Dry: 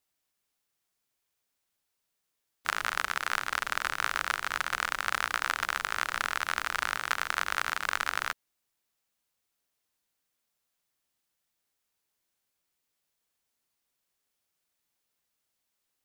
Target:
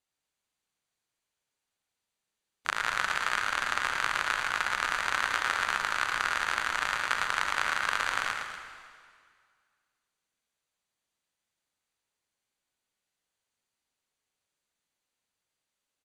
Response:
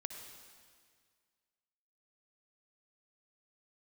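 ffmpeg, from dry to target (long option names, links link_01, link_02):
-filter_complex "[0:a]aecho=1:1:111|240:0.473|0.237[link_01];[1:a]atrim=start_sample=2205,asetrate=41454,aresample=44100[link_02];[link_01][link_02]afir=irnorm=-1:irlink=0,asplit=2[link_03][link_04];[link_04]acrusher=bits=4:mix=0:aa=0.5,volume=-8dB[link_05];[link_03][link_05]amix=inputs=2:normalize=0,lowpass=8800,bandreject=frequency=5300:width=9.8"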